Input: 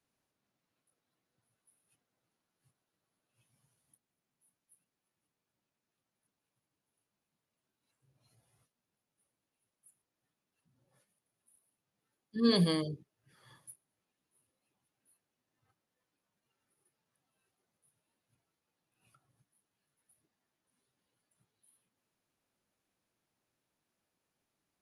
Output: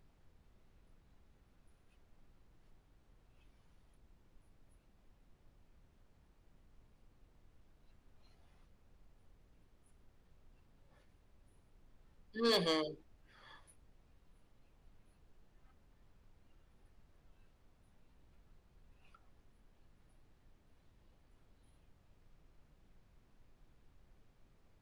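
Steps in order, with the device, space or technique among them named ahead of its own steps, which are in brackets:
aircraft cabin announcement (band-pass filter 490–4,100 Hz; soft clipping −29 dBFS, distortion −14 dB; brown noise bed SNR 14 dB)
level +4.5 dB

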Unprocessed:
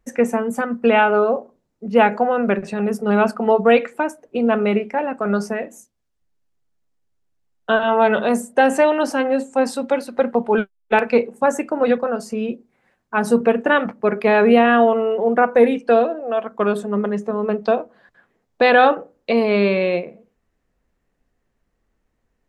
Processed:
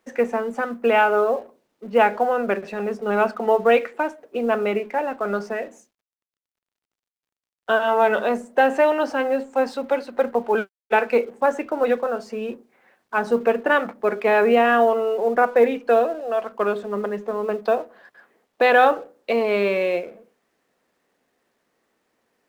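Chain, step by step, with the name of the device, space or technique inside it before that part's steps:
phone line with mismatched companding (band-pass filter 320–3,600 Hz; mu-law and A-law mismatch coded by mu)
level −2 dB

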